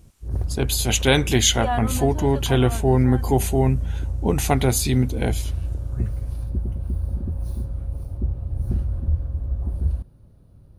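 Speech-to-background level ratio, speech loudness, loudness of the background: 7.0 dB, -21.0 LUFS, -28.0 LUFS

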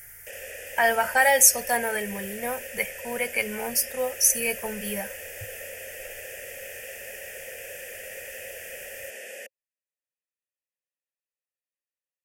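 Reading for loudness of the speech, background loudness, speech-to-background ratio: -23.0 LUFS, -39.0 LUFS, 16.0 dB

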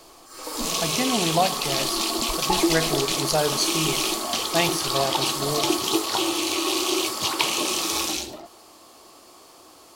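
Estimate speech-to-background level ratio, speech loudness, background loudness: -3.5 dB, -27.0 LUFS, -23.5 LUFS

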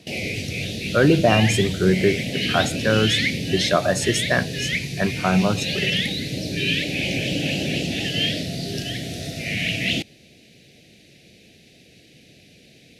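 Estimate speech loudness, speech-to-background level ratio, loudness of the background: -21.5 LUFS, 2.5 dB, -24.0 LUFS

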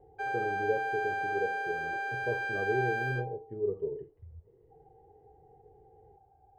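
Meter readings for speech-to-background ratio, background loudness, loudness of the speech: -3.0 dB, -33.5 LUFS, -36.5 LUFS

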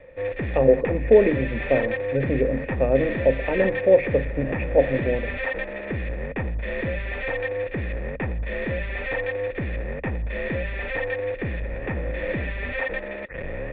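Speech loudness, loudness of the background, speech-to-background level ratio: -22.0 LUFS, -29.0 LUFS, 7.0 dB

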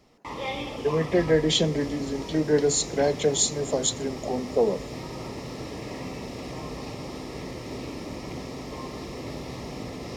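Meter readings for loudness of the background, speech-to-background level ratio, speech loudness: -36.0 LUFS, 11.0 dB, -25.0 LUFS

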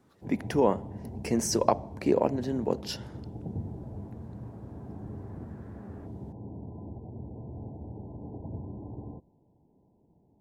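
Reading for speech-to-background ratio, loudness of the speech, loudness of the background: 13.0 dB, -29.0 LUFS, -42.0 LUFS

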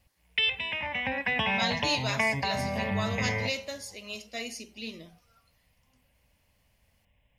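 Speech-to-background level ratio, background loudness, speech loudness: -5.0 dB, -29.0 LUFS, -34.0 LUFS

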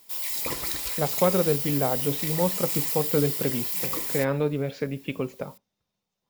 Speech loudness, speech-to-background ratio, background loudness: -27.5 LUFS, -1.0 dB, -26.5 LUFS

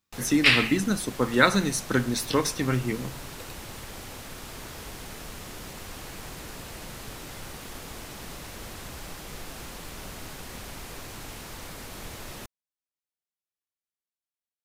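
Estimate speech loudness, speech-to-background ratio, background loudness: -23.5 LUFS, 16.5 dB, -40.0 LUFS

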